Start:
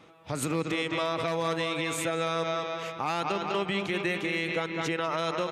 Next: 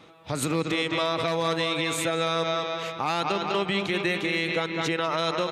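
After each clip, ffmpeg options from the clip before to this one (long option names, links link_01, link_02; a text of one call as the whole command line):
ffmpeg -i in.wav -af "equalizer=frequency=3900:width_type=o:width=0.34:gain=5.5,volume=3dB" out.wav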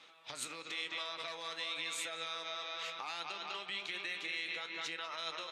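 ffmpeg -i in.wav -af "acompressor=threshold=-31dB:ratio=6,bandpass=frequency=4100:width_type=q:width=0.58:csg=0,flanger=delay=9.5:depth=7.8:regen=62:speed=0.98:shape=triangular,volume=3dB" out.wav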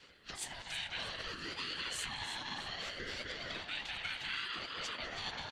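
ffmpeg -i in.wav -af "aecho=1:1:320|640|960|1280:0.299|0.0985|0.0325|0.0107,afftfilt=real='hypot(re,im)*cos(2*PI*random(0))':imag='hypot(re,im)*sin(2*PI*random(1))':win_size=512:overlap=0.75,aeval=exprs='val(0)*sin(2*PI*600*n/s+600*0.35/0.63*sin(2*PI*0.63*n/s))':channel_layout=same,volume=8.5dB" out.wav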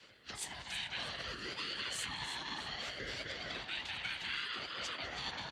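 ffmpeg -i in.wav -af "afreqshift=38" out.wav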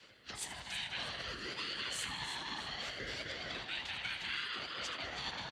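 ffmpeg -i in.wav -af "aecho=1:1:78|156|234|312|390:0.2|0.102|0.0519|0.0265|0.0135" out.wav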